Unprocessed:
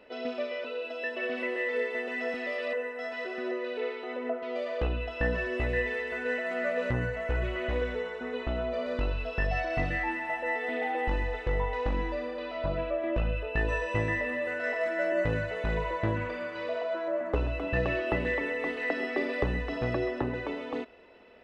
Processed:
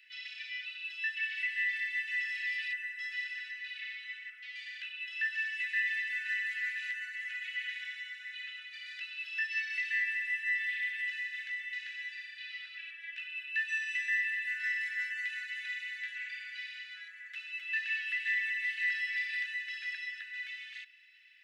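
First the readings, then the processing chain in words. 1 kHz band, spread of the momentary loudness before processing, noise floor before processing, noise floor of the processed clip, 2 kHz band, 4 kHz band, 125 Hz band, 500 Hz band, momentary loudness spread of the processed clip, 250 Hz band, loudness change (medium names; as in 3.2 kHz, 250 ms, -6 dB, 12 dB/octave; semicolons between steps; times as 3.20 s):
under -30 dB, 6 LU, -39 dBFS, -50 dBFS, +1.5 dB, +2.5 dB, under -40 dB, under -40 dB, 12 LU, under -40 dB, -3.0 dB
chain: steep high-pass 1.7 kHz 72 dB/octave; trim +2.5 dB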